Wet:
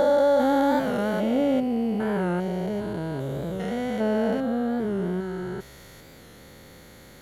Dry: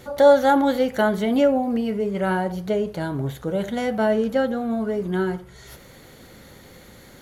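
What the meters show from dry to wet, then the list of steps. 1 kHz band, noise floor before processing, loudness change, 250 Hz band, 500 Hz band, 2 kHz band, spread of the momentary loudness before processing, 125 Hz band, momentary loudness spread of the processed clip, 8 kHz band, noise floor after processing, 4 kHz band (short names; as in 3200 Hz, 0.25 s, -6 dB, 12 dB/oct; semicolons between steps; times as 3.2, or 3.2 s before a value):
-4.5 dB, -47 dBFS, -3.5 dB, -1.5 dB, -4.0 dB, -5.5 dB, 11 LU, -1.5 dB, 10 LU, n/a, -48 dBFS, -5.0 dB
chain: stepped spectrum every 0.4 s; record warp 45 rpm, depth 100 cents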